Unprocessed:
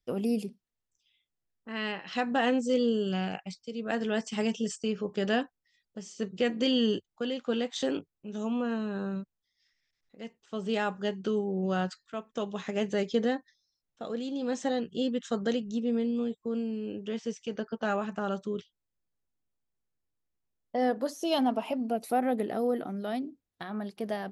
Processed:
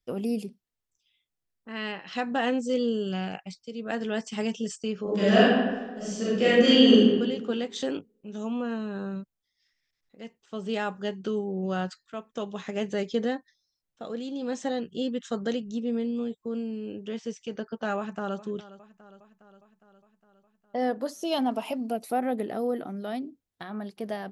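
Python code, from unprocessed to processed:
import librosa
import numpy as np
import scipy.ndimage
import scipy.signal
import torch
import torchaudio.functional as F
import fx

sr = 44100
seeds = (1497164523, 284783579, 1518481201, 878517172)

y = fx.reverb_throw(x, sr, start_s=5.03, length_s=2.04, rt60_s=1.3, drr_db=-9.5)
y = fx.echo_throw(y, sr, start_s=17.97, length_s=0.41, ms=410, feedback_pct=65, wet_db=-16.5)
y = fx.high_shelf(y, sr, hz=4100.0, db=9.5, at=(21.51, 21.97))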